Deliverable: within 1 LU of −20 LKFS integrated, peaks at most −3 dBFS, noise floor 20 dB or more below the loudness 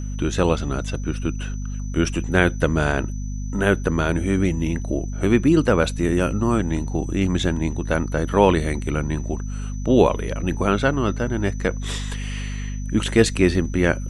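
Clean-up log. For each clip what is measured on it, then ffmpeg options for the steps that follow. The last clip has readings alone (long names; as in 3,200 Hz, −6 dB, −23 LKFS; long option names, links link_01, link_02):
mains hum 50 Hz; hum harmonics up to 250 Hz; level of the hum −25 dBFS; interfering tone 6,000 Hz; level of the tone −44 dBFS; integrated loudness −22.0 LKFS; sample peak −1.5 dBFS; target loudness −20.0 LKFS
→ -af "bandreject=frequency=50:width_type=h:width=4,bandreject=frequency=100:width_type=h:width=4,bandreject=frequency=150:width_type=h:width=4,bandreject=frequency=200:width_type=h:width=4,bandreject=frequency=250:width_type=h:width=4"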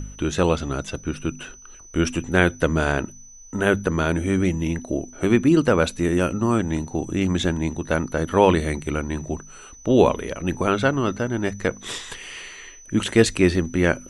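mains hum none found; interfering tone 6,000 Hz; level of the tone −44 dBFS
→ -af "bandreject=frequency=6000:width=30"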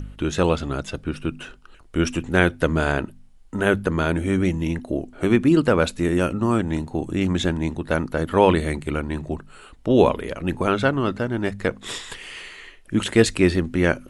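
interfering tone none found; integrated loudness −22.0 LKFS; sample peak −2.0 dBFS; target loudness −20.0 LKFS
→ -af "volume=2dB,alimiter=limit=-3dB:level=0:latency=1"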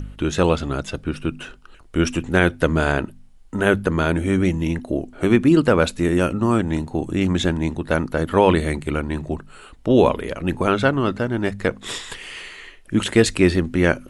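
integrated loudness −20.5 LKFS; sample peak −3.0 dBFS; background noise floor −46 dBFS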